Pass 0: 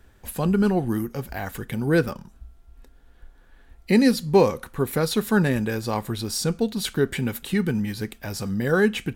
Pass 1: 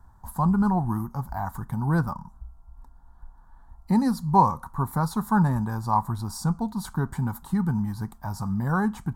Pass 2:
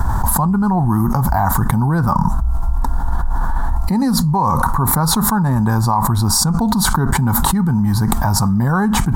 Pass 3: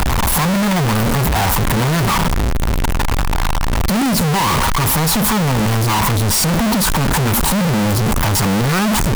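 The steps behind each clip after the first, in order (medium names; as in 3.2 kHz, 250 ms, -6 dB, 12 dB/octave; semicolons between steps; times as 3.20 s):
FFT filter 170 Hz 0 dB, 480 Hz -19 dB, 950 Hz +10 dB, 2.6 kHz -30 dB, 4.3 kHz -15 dB, 7.9 kHz -10 dB; trim +2 dB
level flattener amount 100%; trim -1.5 dB
one-bit comparator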